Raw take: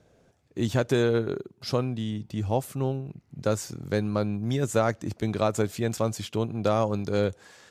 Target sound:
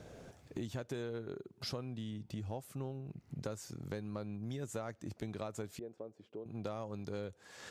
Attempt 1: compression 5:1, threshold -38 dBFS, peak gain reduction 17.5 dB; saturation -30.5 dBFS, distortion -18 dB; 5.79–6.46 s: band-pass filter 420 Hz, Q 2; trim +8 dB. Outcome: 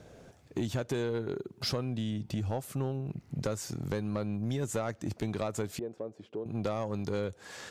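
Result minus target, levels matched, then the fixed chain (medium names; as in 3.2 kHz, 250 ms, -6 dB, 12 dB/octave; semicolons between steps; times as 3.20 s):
compression: peak gain reduction -9.5 dB
compression 5:1, threshold -50 dBFS, peak gain reduction 27 dB; saturation -30.5 dBFS, distortion -34 dB; 5.79–6.46 s: band-pass filter 420 Hz, Q 2; trim +8 dB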